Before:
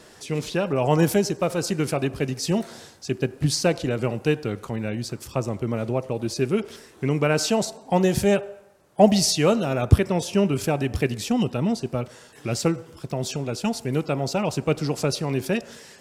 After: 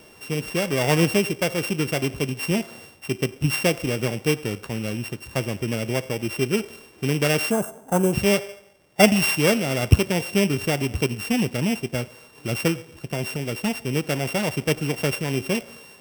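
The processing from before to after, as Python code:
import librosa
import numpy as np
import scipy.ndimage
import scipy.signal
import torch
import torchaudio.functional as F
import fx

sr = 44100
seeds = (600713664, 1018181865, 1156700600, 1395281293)

y = np.r_[np.sort(x[:len(x) // 16 * 16].reshape(-1, 16), axis=1).ravel(), x[len(x) // 16 * 16:]]
y = fx.spec_box(y, sr, start_s=7.51, length_s=0.62, low_hz=1700.0, high_hz=6000.0, gain_db=-17)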